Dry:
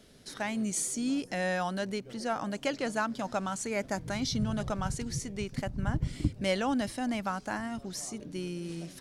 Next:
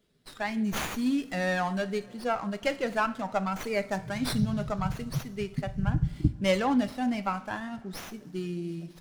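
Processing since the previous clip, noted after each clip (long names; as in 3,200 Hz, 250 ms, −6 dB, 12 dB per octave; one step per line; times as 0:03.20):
spectral dynamics exaggerated over time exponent 1.5
coupled-rooms reverb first 0.38 s, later 3 s, from −20 dB, DRR 9.5 dB
windowed peak hold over 5 samples
level +5.5 dB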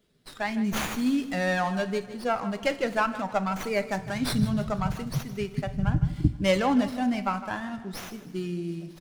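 repeating echo 157 ms, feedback 38%, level −14.5 dB
level +2 dB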